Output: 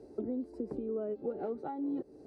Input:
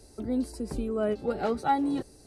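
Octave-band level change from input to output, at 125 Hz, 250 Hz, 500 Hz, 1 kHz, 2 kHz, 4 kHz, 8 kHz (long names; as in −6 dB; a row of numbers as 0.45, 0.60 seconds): −11.5 dB, −7.0 dB, −6.0 dB, −15.5 dB, below −15 dB, below −25 dB, below −25 dB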